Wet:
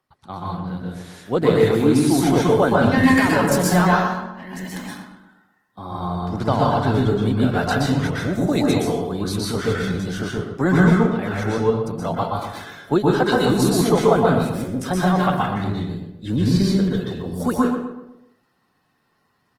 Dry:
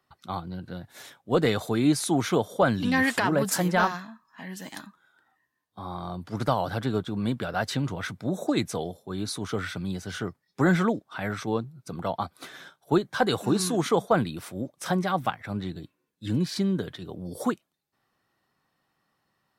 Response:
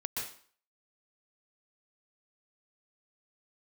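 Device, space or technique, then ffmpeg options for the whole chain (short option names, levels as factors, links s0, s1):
speakerphone in a meeting room: -filter_complex "[0:a]asplit=3[s0][s1][s2];[s0]afade=t=out:st=6.28:d=0.02[s3];[s1]lowpass=9400,afade=t=in:st=6.28:d=0.02,afade=t=out:st=6.8:d=0.02[s4];[s2]afade=t=in:st=6.8:d=0.02[s5];[s3][s4][s5]amix=inputs=3:normalize=0,equalizer=f=290:w=0.41:g=3,asplit=2[s6][s7];[s7]adelay=125,lowpass=f=1700:p=1,volume=0.473,asplit=2[s8][s9];[s9]adelay=125,lowpass=f=1700:p=1,volume=0.43,asplit=2[s10][s11];[s11]adelay=125,lowpass=f=1700:p=1,volume=0.43,asplit=2[s12][s13];[s13]adelay=125,lowpass=f=1700:p=1,volume=0.43,asplit=2[s14][s15];[s15]adelay=125,lowpass=f=1700:p=1,volume=0.43[s16];[s6][s8][s10][s12][s14][s16]amix=inputs=6:normalize=0[s17];[1:a]atrim=start_sample=2205[s18];[s17][s18]afir=irnorm=-1:irlink=0,asplit=2[s19][s20];[s20]adelay=220,highpass=300,lowpass=3400,asoftclip=type=hard:threshold=0.2,volume=0.0891[s21];[s19][s21]amix=inputs=2:normalize=0,dynaudnorm=f=190:g=7:m=1.5" -ar 48000 -c:a libopus -b:a 20k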